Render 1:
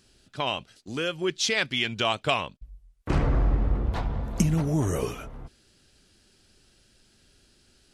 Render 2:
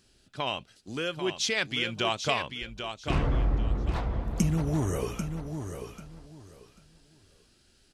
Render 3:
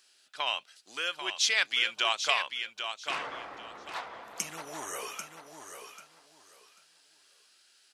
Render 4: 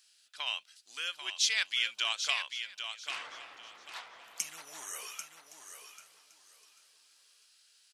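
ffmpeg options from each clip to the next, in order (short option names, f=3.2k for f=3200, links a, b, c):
-af "aecho=1:1:791|1582|2373:0.398|0.0836|0.0176,volume=-3dB"
-af "highpass=990,volume=3dB"
-af "tiltshelf=f=1.3k:g=-8,aecho=1:1:1115|2230:0.0794|0.0214,volume=-8dB"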